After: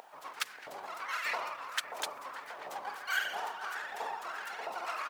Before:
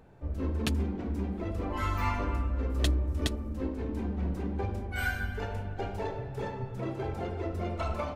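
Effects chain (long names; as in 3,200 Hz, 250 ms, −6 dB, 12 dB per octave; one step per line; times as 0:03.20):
spectral tilt +2.5 dB per octave
in parallel at −1.5 dB: compressor whose output falls as the input rises −42 dBFS, ratio −1
on the sum: pitch-shifted copies added −12 semitones 0 dB, +3 semitones −14 dB, +12 semitones −3 dB
pitch vibrato 15 Hz 93 cents
tempo change 1.6×
background noise white −66 dBFS
auto-filter high-pass saw up 1.5 Hz 710–1,900 Hz
on a send: delay with a low-pass on its return 585 ms, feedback 60%, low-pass 990 Hz, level −4 dB
on the sum: level −8 dB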